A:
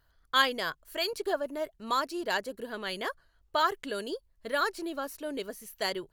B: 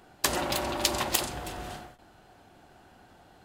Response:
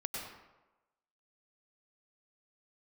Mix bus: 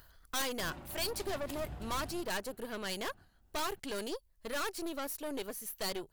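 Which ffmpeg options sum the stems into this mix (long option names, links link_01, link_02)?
-filter_complex "[0:a]acompressor=mode=upward:threshold=-49dB:ratio=2.5,aeval=exprs='0.0841*(abs(mod(val(0)/0.0841+3,4)-2)-1)':channel_layout=same,aeval=exprs='(tanh(56.2*val(0)+0.65)-tanh(0.65))/56.2':channel_layout=same,volume=1dB,asplit=2[link_01][link_02];[1:a]bass=frequency=250:gain=14,treble=frequency=4000:gain=-10,adelay=350,volume=-16.5dB,afade=type=in:start_time=1.41:duration=0.36:silence=0.473151,asplit=2[link_03][link_04];[link_04]volume=-12.5dB[link_05];[link_02]apad=whole_len=167355[link_06];[link_03][link_06]sidechaingate=range=-33dB:threshold=-54dB:ratio=16:detection=peak[link_07];[2:a]atrim=start_sample=2205[link_08];[link_05][link_08]afir=irnorm=-1:irlink=0[link_09];[link_01][link_07][link_09]amix=inputs=3:normalize=0,crystalizer=i=1:c=0"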